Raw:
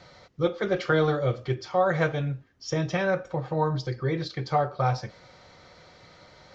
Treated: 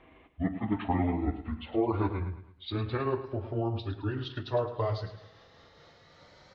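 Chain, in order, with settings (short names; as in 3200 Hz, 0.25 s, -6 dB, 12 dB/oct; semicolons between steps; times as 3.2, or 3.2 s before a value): gliding pitch shift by -11.5 st ending unshifted; feedback echo 0.107 s, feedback 42%, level -12 dB; gain -4 dB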